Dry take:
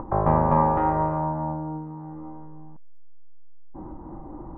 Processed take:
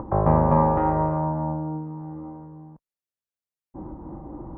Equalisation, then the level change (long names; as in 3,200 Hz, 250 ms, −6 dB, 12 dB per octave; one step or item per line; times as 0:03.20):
high-pass filter 42 Hz
low-shelf EQ 380 Hz +6 dB
parametric band 530 Hz +3 dB 0.45 octaves
−2.0 dB